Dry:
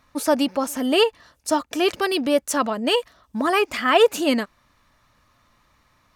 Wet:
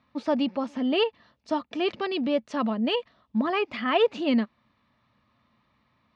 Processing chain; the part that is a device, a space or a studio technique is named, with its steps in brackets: guitar cabinet (speaker cabinet 76–4100 Hz, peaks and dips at 130 Hz +4 dB, 220 Hz +10 dB, 1500 Hz -5 dB); gain -6.5 dB

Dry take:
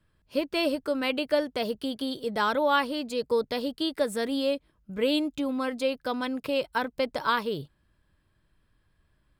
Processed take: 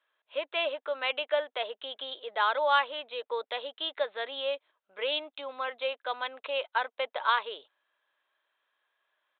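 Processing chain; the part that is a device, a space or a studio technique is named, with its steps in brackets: musical greeting card (downsampling 8000 Hz; HPF 590 Hz 24 dB/oct; bell 4000 Hz +7 dB 0.27 oct)

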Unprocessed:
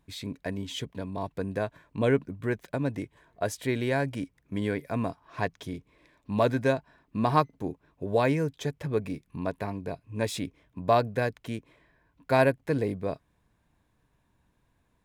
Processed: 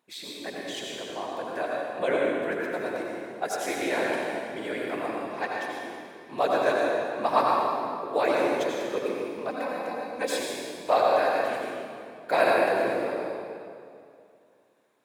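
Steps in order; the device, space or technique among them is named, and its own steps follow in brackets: whispering ghost (whisperiser; HPF 460 Hz 12 dB/oct; reverb RT60 2.4 s, pre-delay 77 ms, DRR -3 dB); 9.49–10.4 comb 3.9 ms, depth 68%

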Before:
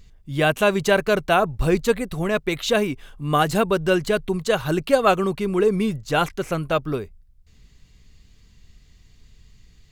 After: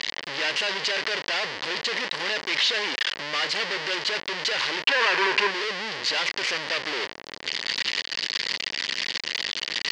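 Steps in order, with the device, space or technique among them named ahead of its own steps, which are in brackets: home computer beeper (infinite clipping; speaker cabinet 660–5200 Hz, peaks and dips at 720 Hz -9 dB, 1300 Hz -6 dB, 1900 Hz +7 dB, 3000 Hz +5 dB, 4700 Hz +7 dB); 4.84–5.51 thirty-one-band EQ 400 Hz +9 dB, 1000 Hz +11 dB, 1600 Hz +9 dB, 2500 Hz +6 dB

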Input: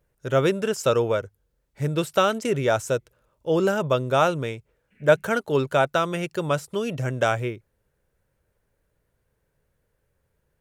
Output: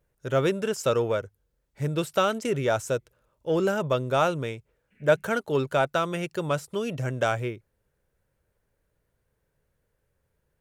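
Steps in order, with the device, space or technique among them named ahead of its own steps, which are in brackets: parallel distortion (in parallel at -14 dB: hard clip -21 dBFS, distortion -7 dB); on the sum: gain -4 dB

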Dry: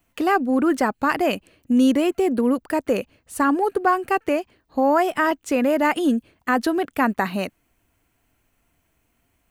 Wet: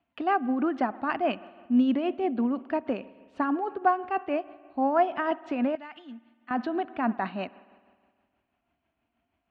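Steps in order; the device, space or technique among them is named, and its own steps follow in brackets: combo amplifier with spring reverb and tremolo (spring tank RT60 1.8 s, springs 52 ms, chirp 60 ms, DRR 17 dB; tremolo 6.2 Hz, depth 44%; speaker cabinet 79–3400 Hz, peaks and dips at 110 Hz -7 dB, 160 Hz -5 dB, 240 Hz +4 dB, 480 Hz -8 dB, 700 Hz +7 dB, 2000 Hz -4 dB); 5.75–6.51 passive tone stack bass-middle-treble 5-5-5; gain -6 dB

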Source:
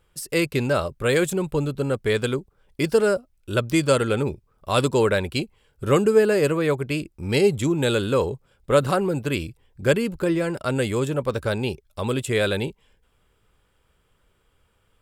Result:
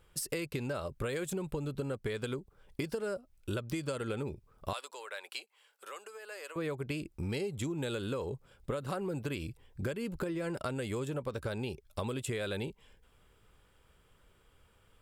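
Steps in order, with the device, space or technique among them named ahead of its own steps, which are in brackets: serial compression, peaks first (compressor, threshold -27 dBFS, peak gain reduction 15 dB; compressor 3:1, threshold -34 dBFS, peak gain reduction 8 dB); 4.73–6.56 Bessel high-pass 900 Hz, order 4

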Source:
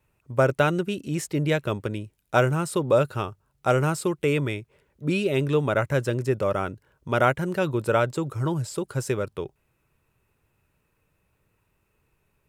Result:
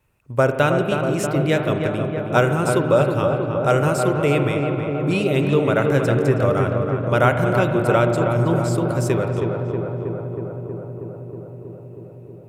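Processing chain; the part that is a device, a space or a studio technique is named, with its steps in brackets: dub delay into a spring reverb (darkening echo 0.319 s, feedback 81%, low-pass 1800 Hz, level -5 dB; spring tank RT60 2.5 s, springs 42 ms, chirp 45 ms, DRR 7.5 dB); gain +3 dB

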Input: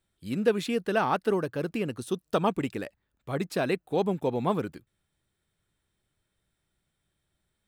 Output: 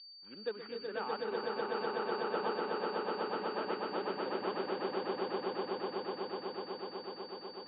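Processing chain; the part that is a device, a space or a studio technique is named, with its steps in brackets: toy sound module (decimation joined by straight lines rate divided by 8×; pulse-width modulation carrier 4600 Hz; speaker cabinet 570–3600 Hz, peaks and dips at 670 Hz -9 dB, 1100 Hz -4 dB, 2100 Hz -5 dB, 3100 Hz +6 dB); swelling echo 0.124 s, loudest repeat 8, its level -3 dB; gain -8 dB

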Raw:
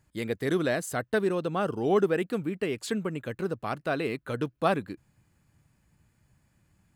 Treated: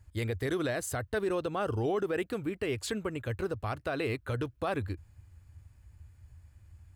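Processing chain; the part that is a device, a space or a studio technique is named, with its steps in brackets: car stereo with a boomy subwoofer (resonant low shelf 120 Hz +11.5 dB, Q 3; limiter -23 dBFS, peak gain reduction 10 dB)

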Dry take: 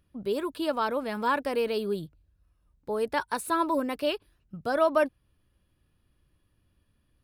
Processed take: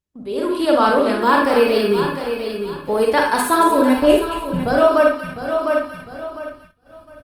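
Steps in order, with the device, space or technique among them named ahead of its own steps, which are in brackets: 3.97–4.68 RIAA curve playback; thin delay 0.225 s, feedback 37%, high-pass 1700 Hz, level -7.5 dB; feedback echo 0.704 s, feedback 23%, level -10 dB; speakerphone in a meeting room (reverb RT60 0.40 s, pre-delay 38 ms, DRR 0.5 dB; AGC gain up to 14 dB; gate -42 dBFS, range -17 dB; gain -1 dB; Opus 24 kbps 48000 Hz)

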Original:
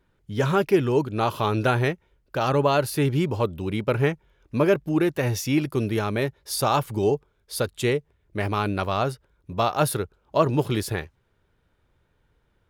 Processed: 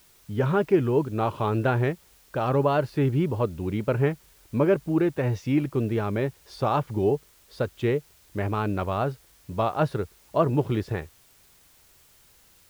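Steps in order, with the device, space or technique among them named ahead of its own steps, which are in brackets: cassette deck with a dirty head (tape spacing loss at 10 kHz 29 dB; wow and flutter; white noise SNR 32 dB)

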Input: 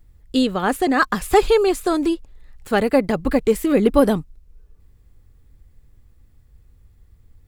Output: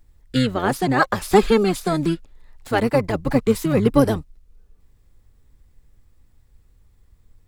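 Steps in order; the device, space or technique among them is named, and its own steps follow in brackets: low shelf 230 Hz -4.5 dB; octave pedal (harmoniser -12 st -3 dB); gain -1.5 dB

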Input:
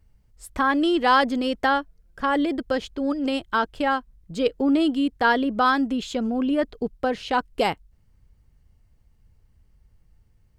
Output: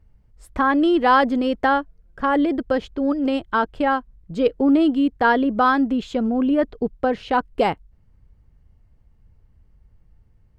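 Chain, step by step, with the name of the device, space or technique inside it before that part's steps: through cloth (high shelf 3200 Hz -14 dB); gain +4 dB

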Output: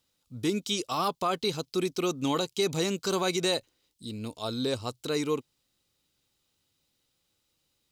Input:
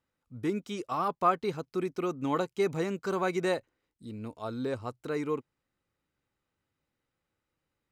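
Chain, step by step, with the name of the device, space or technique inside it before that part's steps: over-bright horn tweeter (resonant high shelf 2600 Hz +11.5 dB, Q 1.5; limiter -20.5 dBFS, peak gain reduction 7 dB); gain +3 dB

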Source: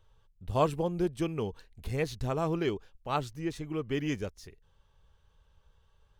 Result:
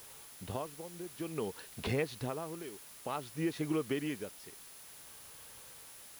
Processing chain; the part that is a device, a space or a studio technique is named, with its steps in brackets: medium wave at night (BPF 190–4200 Hz; compressor, threshold -43 dBFS, peak gain reduction 21 dB; tremolo 0.55 Hz, depth 80%; whine 10000 Hz -69 dBFS; white noise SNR 14 dB); gain +12.5 dB

